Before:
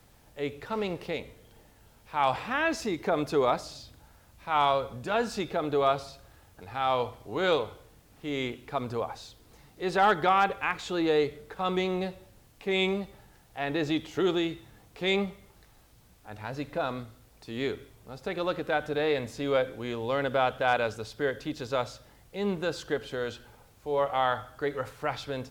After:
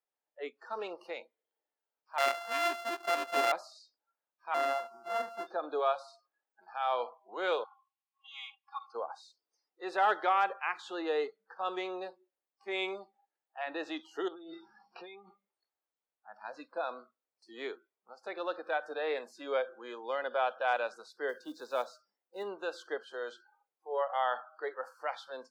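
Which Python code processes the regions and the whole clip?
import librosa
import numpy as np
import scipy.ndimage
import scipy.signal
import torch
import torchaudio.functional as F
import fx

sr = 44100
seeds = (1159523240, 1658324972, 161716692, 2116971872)

y = fx.chain(x, sr, fx.sample_sort(block=64),
    fx.highpass(hz=130.0, slope=12),
    fx.peak_eq(hz=2400.0, db=3.5, octaves=2.5), at=(2.18, 3.52))
y = fx.chain(y, sr, fx.sample_sort(block=64),
    fx.high_shelf(hz=3200.0, db=-11.0), at=(4.54, 5.47))
y = fx.chain(y, sr, fx.cheby_ripple_highpass(hz=760.0, ripple_db=9),
    fx.comb(ms=3.6, depth=0.88), at=(7.64, 8.95))
y = fx.chain(y, sr, fx.bass_treble(bass_db=6, treble_db=-3),
    fx.over_compress(threshold_db=-36.0, ratio=-1.0),
    fx.brickwall_lowpass(high_hz=5800.0), at=(14.28, 15.29))
y = fx.chain(y, sr, fx.block_float(bits=5),
    fx.low_shelf(hz=270.0, db=7.5), at=(21.29, 22.43))
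y = fx.noise_reduce_blind(y, sr, reduce_db=27)
y = scipy.signal.sosfilt(scipy.signal.bessel(6, 520.0, 'highpass', norm='mag', fs=sr, output='sos'), y)
y = fx.high_shelf(y, sr, hz=3600.0, db=-11.5)
y = y * librosa.db_to_amplitude(-2.5)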